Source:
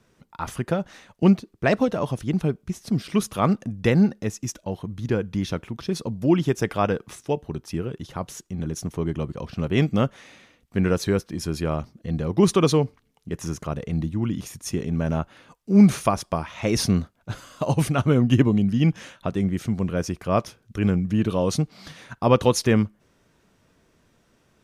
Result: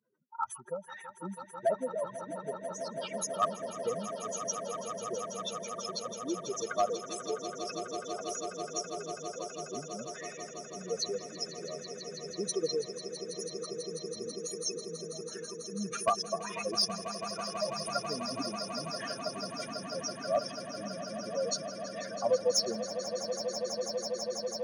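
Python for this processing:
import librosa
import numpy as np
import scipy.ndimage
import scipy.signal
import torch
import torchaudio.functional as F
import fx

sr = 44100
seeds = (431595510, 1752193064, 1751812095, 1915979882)

p1 = fx.spec_expand(x, sr, power=3.5)
p2 = scipy.signal.sosfilt(scipy.signal.butter(2, 830.0, 'highpass', fs=sr, output='sos'), p1)
p3 = np.clip(p2, -10.0 ** (-20.0 / 20.0), 10.0 ** (-20.0 / 20.0))
y = p3 + fx.echo_swell(p3, sr, ms=164, loudest=8, wet_db=-12.5, dry=0)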